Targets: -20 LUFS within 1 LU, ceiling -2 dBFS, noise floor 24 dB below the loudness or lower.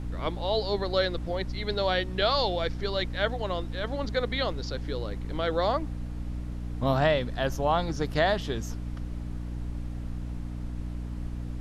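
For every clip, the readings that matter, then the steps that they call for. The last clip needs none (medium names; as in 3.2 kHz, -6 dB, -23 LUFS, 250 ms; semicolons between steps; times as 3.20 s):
hum 60 Hz; highest harmonic 300 Hz; hum level -32 dBFS; noise floor -35 dBFS; noise floor target -54 dBFS; loudness -30.0 LUFS; peak level -11.0 dBFS; loudness target -20.0 LUFS
-> de-hum 60 Hz, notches 5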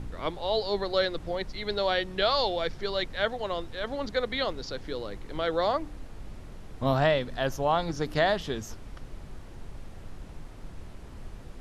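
hum not found; noise floor -44 dBFS; noise floor target -53 dBFS
-> noise print and reduce 9 dB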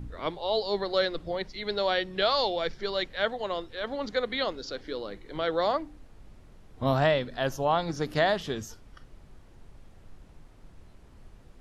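noise floor -53 dBFS; loudness -29.0 LUFS; peak level -11.5 dBFS; loudness target -20.0 LUFS
-> trim +9 dB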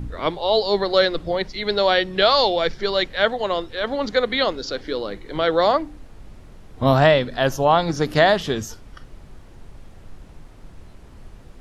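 loudness -20.0 LUFS; peak level -2.5 dBFS; noise floor -44 dBFS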